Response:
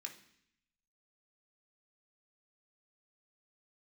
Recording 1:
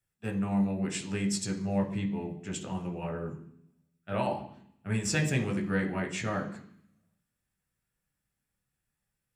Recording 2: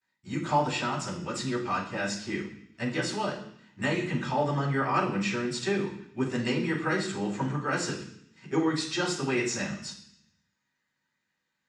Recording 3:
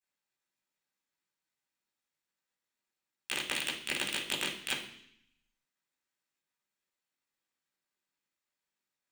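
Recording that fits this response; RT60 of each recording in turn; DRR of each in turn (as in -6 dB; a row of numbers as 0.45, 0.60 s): 1; 0.65, 0.65, 0.65 s; 2.0, -14.0, -7.5 dB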